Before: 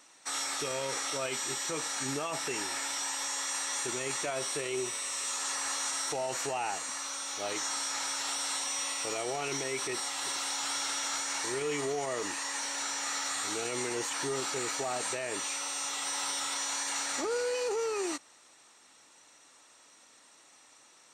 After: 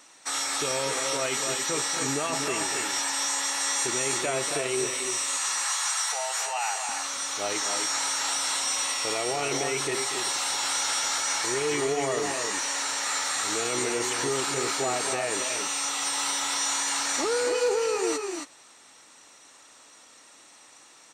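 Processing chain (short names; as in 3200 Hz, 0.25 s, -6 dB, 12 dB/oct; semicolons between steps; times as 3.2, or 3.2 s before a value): 5.37–6.89 HPF 740 Hz 24 dB/oct; loudspeakers at several distances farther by 82 m -11 dB, 94 m -6 dB; gain +5 dB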